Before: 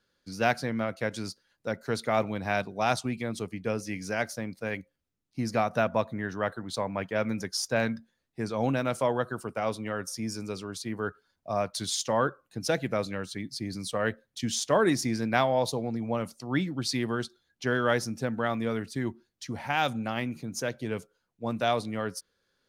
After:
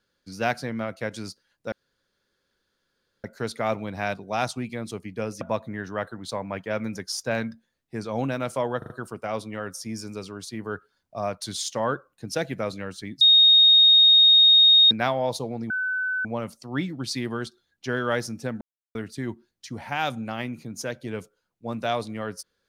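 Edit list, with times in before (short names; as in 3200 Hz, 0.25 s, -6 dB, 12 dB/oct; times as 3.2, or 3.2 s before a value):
1.72 insert room tone 1.52 s
3.89–5.86 cut
9.23 stutter 0.04 s, 4 plays
13.54–15.24 bleep 3720 Hz -11.5 dBFS
16.03 add tone 1510 Hz -23.5 dBFS 0.55 s
18.39–18.73 mute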